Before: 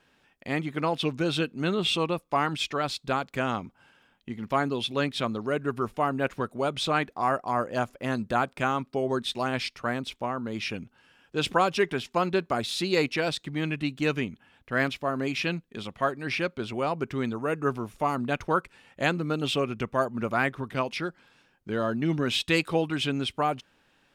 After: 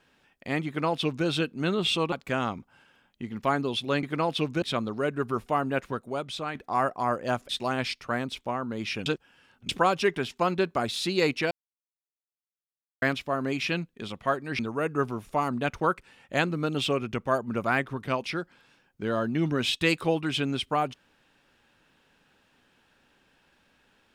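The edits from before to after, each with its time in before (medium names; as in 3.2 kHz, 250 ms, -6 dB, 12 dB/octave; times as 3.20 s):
0.67–1.26 s: copy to 5.10 s
2.12–3.19 s: delete
6.13–7.03 s: fade out, to -9.5 dB
7.97–9.24 s: delete
10.81–11.44 s: reverse
13.26–14.77 s: mute
16.34–17.26 s: delete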